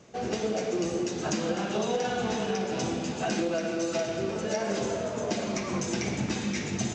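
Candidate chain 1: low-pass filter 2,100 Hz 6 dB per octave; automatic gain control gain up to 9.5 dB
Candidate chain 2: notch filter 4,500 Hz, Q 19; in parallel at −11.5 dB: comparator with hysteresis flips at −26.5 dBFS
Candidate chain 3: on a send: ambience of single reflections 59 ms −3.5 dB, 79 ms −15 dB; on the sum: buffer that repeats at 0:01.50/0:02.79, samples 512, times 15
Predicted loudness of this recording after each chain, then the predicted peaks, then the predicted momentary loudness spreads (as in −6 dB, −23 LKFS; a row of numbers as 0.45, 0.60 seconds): −21.5, −29.5, −28.0 LKFS; −6.0, −14.5, −14.0 dBFS; 3, 2, 2 LU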